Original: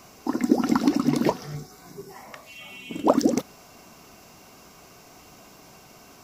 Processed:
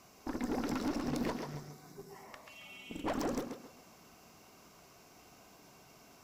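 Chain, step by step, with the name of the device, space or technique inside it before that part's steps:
rockabilly slapback (tube saturation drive 25 dB, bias 0.7; tape delay 136 ms, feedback 35%, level −4.5 dB, low-pass 4,900 Hz)
level −6.5 dB

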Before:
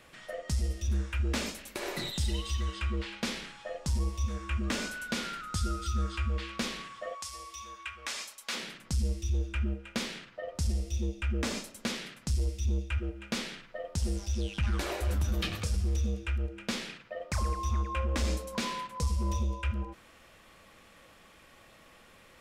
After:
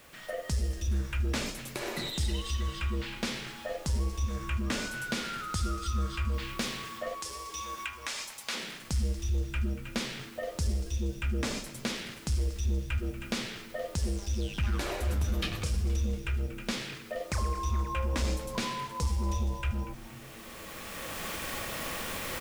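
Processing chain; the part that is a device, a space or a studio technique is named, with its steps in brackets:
cheap recorder with automatic gain (white noise bed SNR 29 dB; camcorder AGC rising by 13 dB per second)
0:06.34–0:06.98: high-shelf EQ 10,000 Hz +7 dB
echo with shifted repeats 236 ms, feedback 62%, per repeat −100 Hz, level −16 dB

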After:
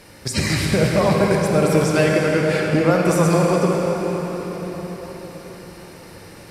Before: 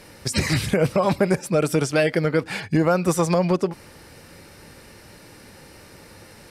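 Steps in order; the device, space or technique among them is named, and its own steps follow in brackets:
cathedral (convolution reverb RT60 5.4 s, pre-delay 26 ms, DRR −1.5 dB)

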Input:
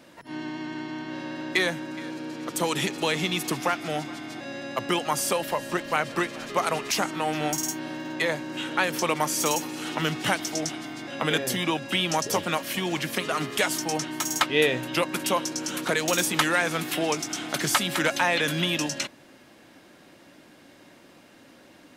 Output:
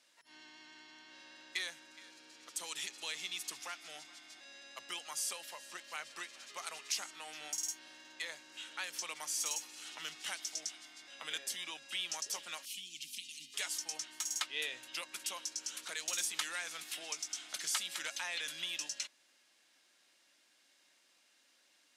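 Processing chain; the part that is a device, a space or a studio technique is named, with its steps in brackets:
0:12.65–0:13.54: elliptic band-stop filter 270–2,700 Hz, stop band 40 dB
piezo pickup straight into a mixer (low-pass filter 7,400 Hz 12 dB per octave; first difference)
level −4.5 dB

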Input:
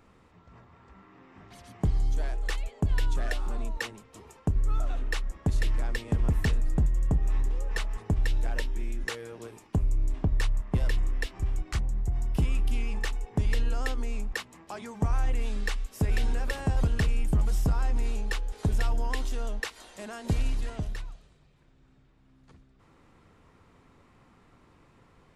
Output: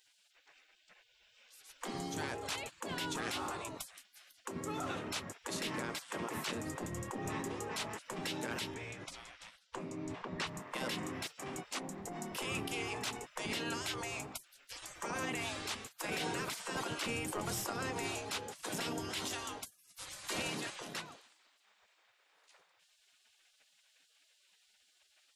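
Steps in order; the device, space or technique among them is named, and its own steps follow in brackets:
gate on every frequency bin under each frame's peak −25 dB weak
0:08.74–0:10.47: high-frequency loss of the air 82 metres
clipper into limiter (hard clipping −26 dBFS, distortion −44 dB; brickwall limiter −34 dBFS, peak gain reduction 7.5 dB)
level +6.5 dB

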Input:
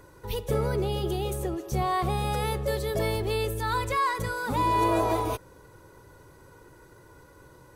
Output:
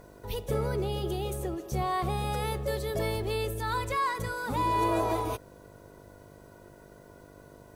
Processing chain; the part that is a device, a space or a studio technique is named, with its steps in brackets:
video cassette with head-switching buzz (hum with harmonics 50 Hz, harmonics 14, −51 dBFS 0 dB per octave; white noise bed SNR 40 dB)
level −3 dB

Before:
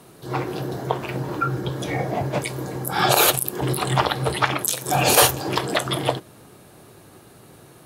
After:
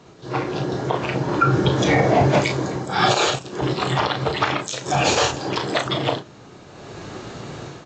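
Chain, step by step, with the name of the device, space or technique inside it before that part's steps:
double-tracking delay 35 ms −8 dB
low-bitrate web radio (automatic gain control gain up to 13.5 dB; brickwall limiter −6.5 dBFS, peak gain reduction 6 dB; AAC 32 kbit/s 16,000 Hz)

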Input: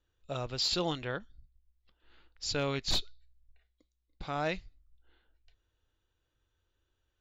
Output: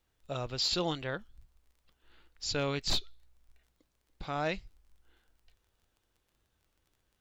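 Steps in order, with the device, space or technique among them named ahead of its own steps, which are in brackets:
warped LP (wow of a warped record 33 1/3 rpm, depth 100 cents; surface crackle 29 per second −56 dBFS; pink noise bed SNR 42 dB)

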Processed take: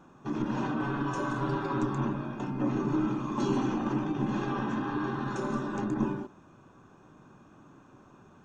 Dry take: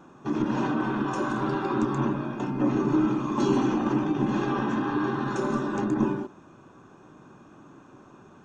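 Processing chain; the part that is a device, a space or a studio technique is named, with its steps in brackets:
low shelf boost with a cut just above (low-shelf EQ 88 Hz +7 dB; parametric band 350 Hz −2.5 dB 0.67 octaves)
0:00.79–0:01.90: comb filter 7.1 ms, depth 55%
level −4.5 dB

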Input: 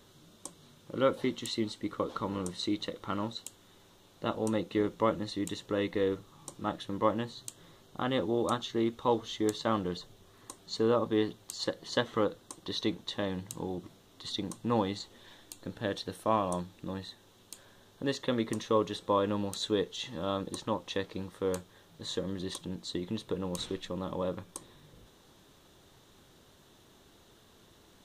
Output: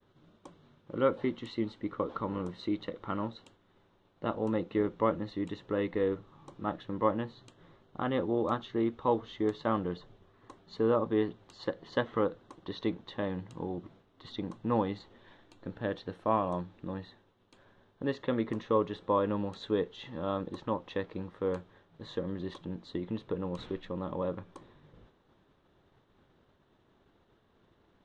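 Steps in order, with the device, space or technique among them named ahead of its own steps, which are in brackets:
hearing-loss simulation (low-pass filter 2,200 Hz 12 dB per octave; downward expander −55 dBFS)

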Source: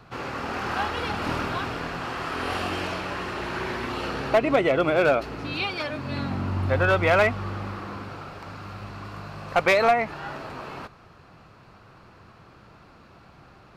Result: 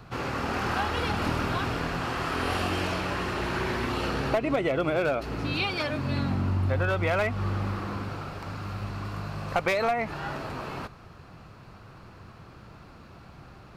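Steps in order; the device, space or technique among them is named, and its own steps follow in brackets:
ASMR close-microphone chain (low-shelf EQ 210 Hz +6.5 dB; downward compressor 5 to 1, threshold −23 dBFS, peak gain reduction 8.5 dB; high-shelf EQ 7,000 Hz +5.5 dB)

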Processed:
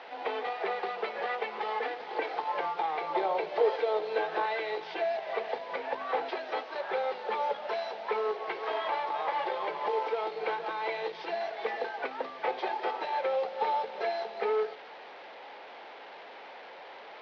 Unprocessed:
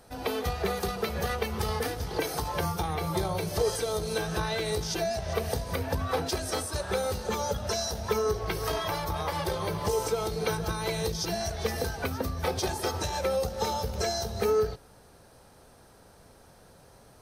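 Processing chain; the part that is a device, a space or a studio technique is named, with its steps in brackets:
digital answering machine (band-pass filter 310–3,200 Hz; linear delta modulator 32 kbit/s, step −41 dBFS; loudspeaker in its box 430–3,800 Hz, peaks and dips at 840 Hz +5 dB, 1,300 Hz −3 dB, 2,100 Hz +4 dB)
0:03.06–0:04.46: dynamic equaliser 470 Hz, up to +5 dB, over −38 dBFS, Q 0.8

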